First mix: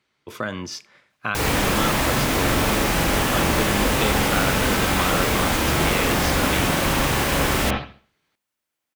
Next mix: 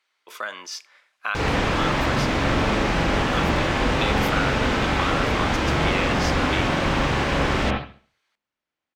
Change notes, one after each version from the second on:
speech: add high-pass 760 Hz 12 dB/octave; background: add distance through air 140 m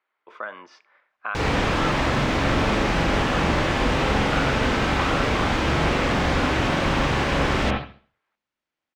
speech: add low-pass 1.5 kHz 12 dB/octave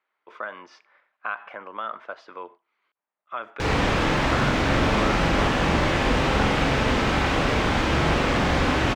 background: entry +2.25 s

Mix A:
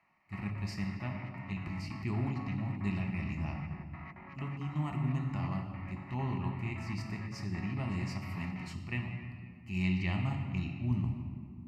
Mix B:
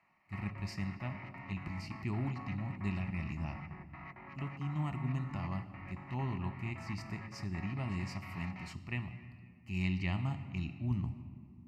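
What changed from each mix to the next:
speech: send -7.5 dB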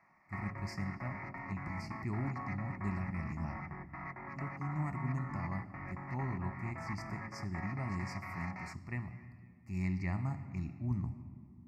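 background +6.0 dB; master: add Chebyshev band-stop 2–5.1 kHz, order 2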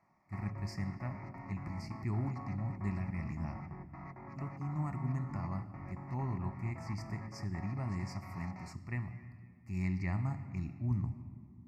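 background: add peaking EQ 1.8 kHz -11.5 dB 1.4 oct; master: add peaking EQ 110 Hz +5 dB 0.24 oct

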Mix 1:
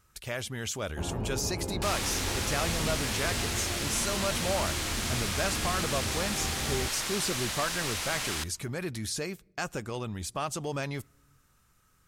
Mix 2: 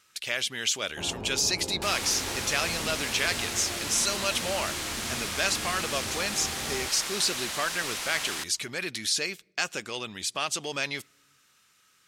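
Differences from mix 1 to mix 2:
speech: add frequency weighting D; master: add bass shelf 120 Hz -11.5 dB

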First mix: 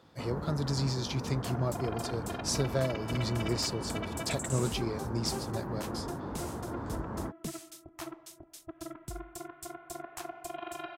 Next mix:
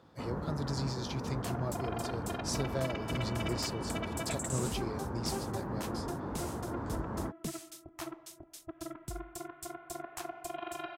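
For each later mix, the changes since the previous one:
speech -5.0 dB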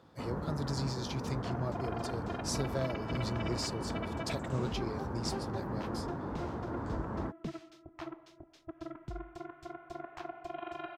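second sound: add distance through air 240 m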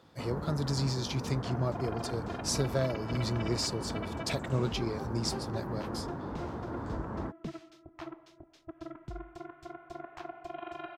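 speech +5.0 dB

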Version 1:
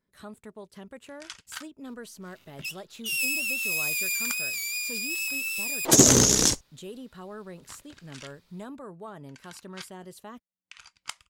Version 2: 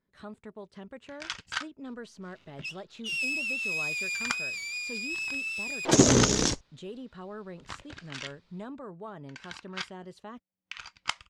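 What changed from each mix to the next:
first sound +9.0 dB; master: add distance through air 110 m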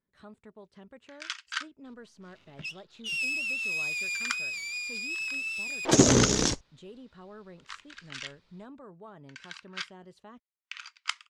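speech -6.0 dB; first sound: add inverse Chebyshev high-pass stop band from 560 Hz, stop band 40 dB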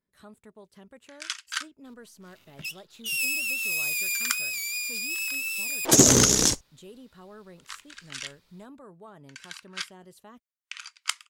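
master: remove distance through air 110 m

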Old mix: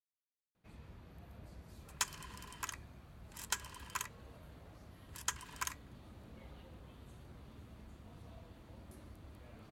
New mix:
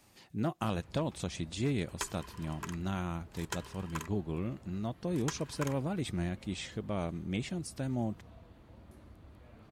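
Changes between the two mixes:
speech: unmuted; second sound: remove high-pass 830 Hz; master: add treble shelf 4.2 kHz -7 dB

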